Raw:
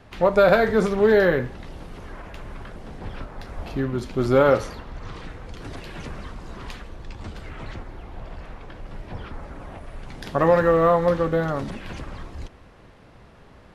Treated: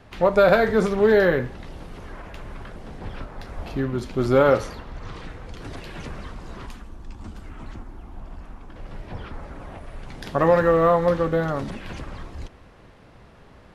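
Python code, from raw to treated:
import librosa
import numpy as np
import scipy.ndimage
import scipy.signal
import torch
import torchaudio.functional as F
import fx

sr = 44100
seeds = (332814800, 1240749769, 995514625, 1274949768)

y = fx.graphic_eq_10(x, sr, hz=(125, 250, 500, 2000, 4000), db=(-6, 4, -9, -7, -7), at=(6.66, 8.76))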